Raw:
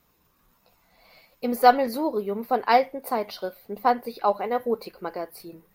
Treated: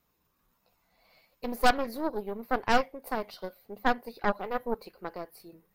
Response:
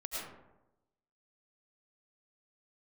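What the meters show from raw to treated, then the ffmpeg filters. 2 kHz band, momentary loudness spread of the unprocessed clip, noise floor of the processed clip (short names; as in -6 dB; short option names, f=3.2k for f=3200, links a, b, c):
-0.5 dB, 16 LU, -74 dBFS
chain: -af "aeval=exprs='0.708*(cos(1*acos(clip(val(0)/0.708,-1,1)))-cos(1*PI/2))+0.2*(cos(6*acos(clip(val(0)/0.708,-1,1)))-cos(6*PI/2))':c=same,volume=-8.5dB"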